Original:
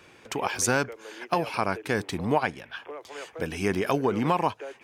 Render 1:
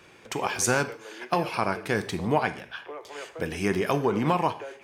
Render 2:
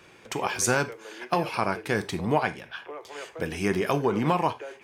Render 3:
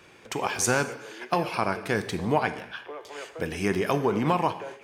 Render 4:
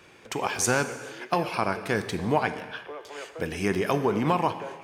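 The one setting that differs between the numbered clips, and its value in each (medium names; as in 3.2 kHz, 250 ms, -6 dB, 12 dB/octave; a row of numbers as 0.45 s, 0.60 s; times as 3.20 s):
gated-style reverb, gate: 190 ms, 120 ms, 300 ms, 470 ms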